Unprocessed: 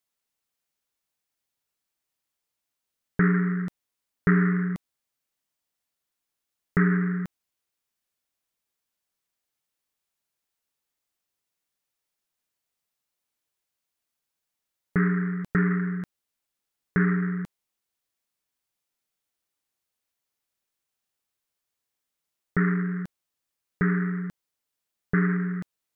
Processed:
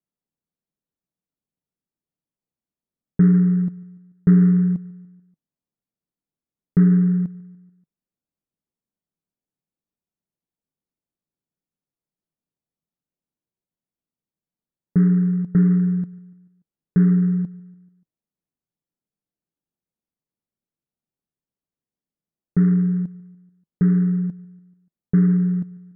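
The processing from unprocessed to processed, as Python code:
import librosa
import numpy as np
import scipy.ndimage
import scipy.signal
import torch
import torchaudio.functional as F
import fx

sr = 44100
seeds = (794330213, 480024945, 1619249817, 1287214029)

p1 = fx.curve_eq(x, sr, hz=(110.0, 160.0, 2300.0), db=(0, 9, -18))
y = p1 + fx.echo_feedback(p1, sr, ms=145, feedback_pct=57, wet_db=-23.0, dry=0)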